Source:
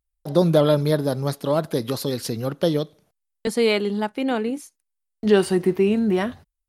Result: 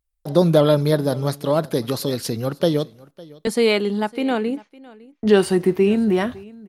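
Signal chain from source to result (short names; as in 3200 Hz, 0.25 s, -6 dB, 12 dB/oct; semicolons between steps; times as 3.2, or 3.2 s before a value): 4.55–5.26 LPF 3100 Hz -> 1800 Hz 24 dB/oct; echo 0.556 s -22 dB; gain +2 dB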